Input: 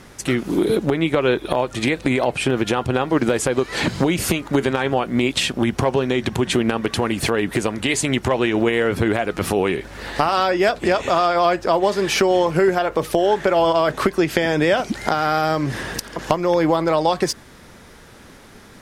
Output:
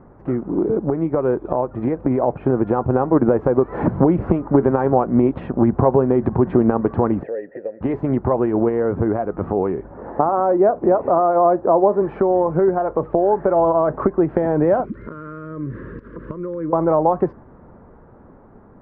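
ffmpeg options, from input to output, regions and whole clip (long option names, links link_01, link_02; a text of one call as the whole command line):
ffmpeg -i in.wav -filter_complex "[0:a]asettb=1/sr,asplit=3[link_01][link_02][link_03];[link_01]atrim=end=7.234[link_04];[link_02]atrim=start=7.23:end=7.81,asetpts=PTS-STARTPTS,afade=type=in:duration=0.004:curve=qsin,afade=type=out:start_time=0.576:duration=0.004:curve=qsin,asplit=3[link_05][link_06][link_07];[link_05]bandpass=frequency=530:width_type=q:width=8,volume=0dB[link_08];[link_06]bandpass=frequency=1840:width_type=q:width=8,volume=-6dB[link_09];[link_07]bandpass=frequency=2480:width_type=q:width=8,volume=-9dB[link_10];[link_08][link_09][link_10]amix=inputs=3:normalize=0,equalizer=frequency=1900:width_type=o:width=0.28:gain=7.5[link_11];[link_03]atrim=start=7.806[link_12];[link_04][link_11]acrossfade=duration=0.004:curve1=hsin:curve2=qsin[link_13];[link_13][link_12]acrossfade=duration=0.004:curve1=qsin:curve2=hsin,asettb=1/sr,asplit=3[link_14][link_15][link_16];[link_14]atrim=end=9.914[link_17];[link_15]atrim=start=9.91:end=12.02,asetpts=PTS-STARTPTS,afade=type=in:duration=0.004:curve=qsin,afade=type=out:start_time=2.106:duration=0.004:curve=qsin,highpass=frequency=310:poles=1,tiltshelf=frequency=1400:gain=7.5[link_18];[link_16]atrim=start=12.016[link_19];[link_17][link_18]acrossfade=duration=0.004:curve1=hsin:curve2=qsin[link_20];[link_20][link_19]acrossfade=duration=0.004:curve1=qsin:curve2=hsin,asettb=1/sr,asplit=3[link_21][link_22][link_23];[link_21]atrim=end=14.854[link_24];[link_22]atrim=start=14.85:end=16.73,asetpts=PTS-STARTPTS,afade=type=in:duration=0.004:curve=qsin,afade=type=out:start_time=1.876:duration=0.004:curve=qsin,acompressor=threshold=-30dB:ratio=2:attack=3.2:release=140:knee=1:detection=peak,asuperstop=centerf=770:order=4:qfactor=1.1,highshelf=frequency=3500:gain=8.5[link_25];[link_23]atrim=start=16.726[link_26];[link_24][link_25]acrossfade=duration=0.004:curve1=hsin:curve2=qsin[link_27];[link_27][link_26]acrossfade=duration=0.004:curve1=qsin:curve2=hsin,lowpass=frequency=1100:width=0.5412,lowpass=frequency=1100:width=1.3066,dynaudnorm=framelen=520:gausssize=9:maxgain=11.5dB,volume=-1dB" out.wav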